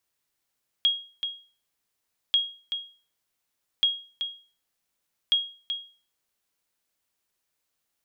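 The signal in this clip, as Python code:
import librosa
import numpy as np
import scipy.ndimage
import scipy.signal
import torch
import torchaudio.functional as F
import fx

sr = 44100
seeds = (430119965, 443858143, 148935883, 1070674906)

y = fx.sonar_ping(sr, hz=3280.0, decay_s=0.38, every_s=1.49, pings=4, echo_s=0.38, echo_db=-8.5, level_db=-14.5)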